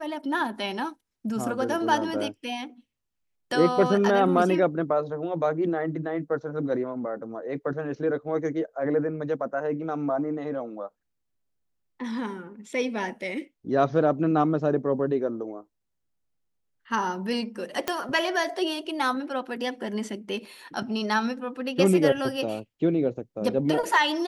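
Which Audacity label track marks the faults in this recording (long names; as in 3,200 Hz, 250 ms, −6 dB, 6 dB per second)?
17.880000	17.880000	click −10 dBFS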